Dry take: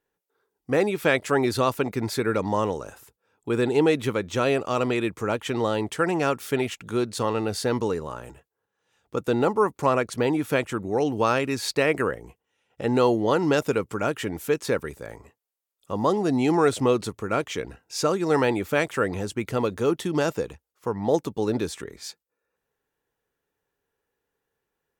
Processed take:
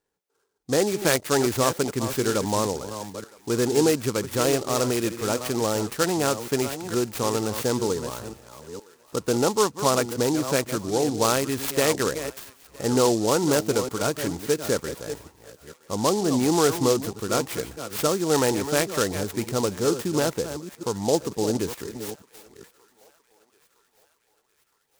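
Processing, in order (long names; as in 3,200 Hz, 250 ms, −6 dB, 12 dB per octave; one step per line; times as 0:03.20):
delay that plays each chunk backwards 463 ms, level −10.5 dB
feedback echo with a high-pass in the loop 964 ms, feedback 63%, high-pass 770 Hz, level −22 dB
short delay modulated by noise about 5,700 Hz, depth 0.079 ms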